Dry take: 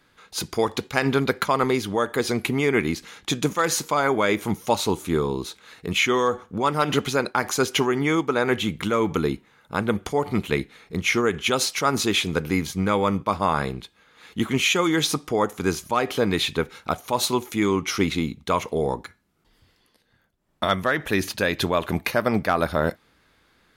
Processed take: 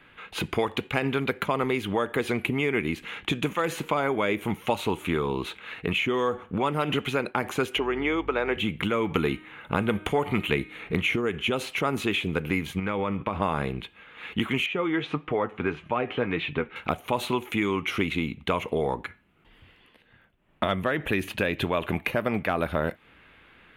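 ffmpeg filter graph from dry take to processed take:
-filter_complex "[0:a]asettb=1/sr,asplit=3[a][b][c];[a]atrim=end=7.784[d];[b]atrim=start=7.78:end=8.57,asetpts=PTS-STARTPTS,afade=t=in:d=0.004:c=qsin,afade=t=out:st=0.786:d=0.004:c=qsin,highpass=360,lowpass=4.7k,aeval=exprs='val(0)+0.00891*(sin(2*PI*50*n/s)+sin(2*PI*2*50*n/s)/2+sin(2*PI*3*50*n/s)/3+sin(2*PI*4*50*n/s)/4+sin(2*PI*5*50*n/s)/5)':c=same[e];[c]atrim=start=8.566[f];[d][e]acrossfade=d=0.004:c1=hsin:c2=qsin[g];[g][f]acrossfade=d=0.004:c1=qsin:c2=hsin,asettb=1/sr,asplit=3[h][i][j];[h]atrim=end=9.154[k];[i]atrim=start=9.15:end=11.16,asetpts=PTS-STARTPTS,afade=t=in:d=0.004:c=qsin,afade=t=out:st=2.006:d=0.004:c=qsin,equalizer=f=5.1k:w=3.8:g=-4.5,bandreject=f=311.6:t=h:w=4,bandreject=f=623.2:t=h:w=4,bandreject=f=934.8:t=h:w=4,bandreject=f=1.2464k:t=h:w=4,bandreject=f=1.558k:t=h:w=4,bandreject=f=1.8696k:t=h:w=4,bandreject=f=2.1812k:t=h:w=4,bandreject=f=2.4928k:t=h:w=4,bandreject=f=2.8044k:t=h:w=4,bandreject=f=3.116k:t=h:w=4,bandreject=f=3.4276k:t=h:w=4,bandreject=f=3.7392k:t=h:w=4,bandreject=f=4.0508k:t=h:w=4,bandreject=f=4.3624k:t=h:w=4,bandreject=f=4.674k:t=h:w=4,bandreject=f=4.9856k:t=h:w=4,bandreject=f=5.2972k:t=h:w=4,bandreject=f=5.6088k:t=h:w=4,bandreject=f=5.9204k:t=h:w=4,bandreject=f=6.232k:t=h:w=4,bandreject=f=6.5436k:t=h:w=4,bandreject=f=6.8552k:t=h:w=4,bandreject=f=7.1668k:t=h:w=4,bandreject=f=7.4784k:t=h:w=4,bandreject=f=7.79k:t=h:w=4,bandreject=f=8.1016k:t=h:w=4,bandreject=f=8.4132k:t=h:w=4,bandreject=f=8.7248k:t=h:w=4,bandreject=f=9.0364k:t=h:w=4,bandreject=f=9.348k:t=h:w=4,bandreject=f=9.6596k:t=h:w=4,bandreject=f=9.9712k:t=h:w=4,bandreject=f=10.2828k:t=h:w=4,bandreject=f=10.5944k:t=h:w=4,bandreject=f=10.906k:t=h:w=4,bandreject=f=11.2176k:t=h:w=4,acontrast=46[l];[j]atrim=start=11.156[m];[k][l]acrossfade=d=0.004:c1=hsin:c2=qsin[n];[n][m]acrossfade=d=0.004:c1=qsin:c2=hsin,asettb=1/sr,asplit=3[o][p][q];[o]atrim=end=12.794[r];[p]atrim=start=12.79:end=13.42,asetpts=PTS-STARTPTS,afade=t=in:d=0.004:c=qsin,afade=t=out:st=0.626:d=0.004:c=qsin,highshelf=f=5.8k:g=-6.5,acompressor=threshold=-25dB:ratio=6:attack=3.2:release=140:knee=1:detection=peak[s];[q]atrim=start=13.416[t];[r][s]acrossfade=d=0.004:c1=hsin:c2=qsin[u];[u][t]acrossfade=d=0.004:c1=qsin:c2=hsin,asettb=1/sr,asplit=3[v][w][x];[v]atrim=end=14.664[y];[w]atrim=start=14.66:end=16.76,asetpts=PTS-STARTPTS,afade=t=in:d=0.004:c=qsin,afade=t=out:st=2.096:d=0.004:c=qsin,lowpass=2.6k,flanger=delay=5.7:depth=3.7:regen=52:speed=1.7:shape=triangular[z];[x]atrim=start=16.756[aa];[y][z]acrossfade=d=0.004:c1=hsin:c2=qsin[ab];[ab][aa]acrossfade=d=0.004:c1=qsin:c2=hsin,highshelf=f=3.8k:t=q:w=3:g=-11.5,acrossover=split=720|5100[ac][ad][ae];[ac]acompressor=threshold=-31dB:ratio=4[af];[ad]acompressor=threshold=-36dB:ratio=4[ag];[ae]acompressor=threshold=-45dB:ratio=4[ah];[af][ag][ah]amix=inputs=3:normalize=0,volume=5dB"

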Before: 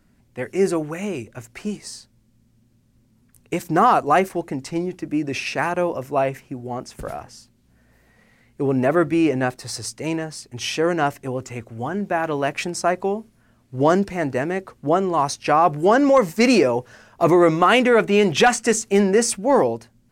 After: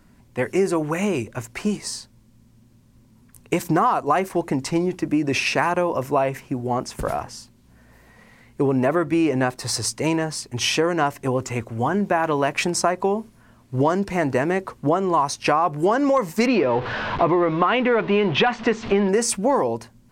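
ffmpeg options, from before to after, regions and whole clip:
-filter_complex "[0:a]asettb=1/sr,asplit=3[a][b][c];[a]atrim=end=16.464[d];[b]atrim=start=16.46:end=19.09,asetpts=PTS-STARTPTS,afade=t=in:d=0.004:c=qsin,afade=t=out:st=2.626:d=0.004:c=qsin,aeval=exprs='val(0)+0.5*0.0422*sgn(val(0))':c=same,lowpass=f=3.7k:w=0.5412,lowpass=f=3.7k:w=1.3066[e];[c]atrim=start=19.086[f];[d][e]acrossfade=d=0.004:c1=hsin:c2=qsin[g];[g][f]acrossfade=d=0.004:c1=qsin:c2=hsin,equalizer=f=1k:t=o:w=0.31:g=6.5,acompressor=threshold=-22dB:ratio=6,volume=5.5dB"

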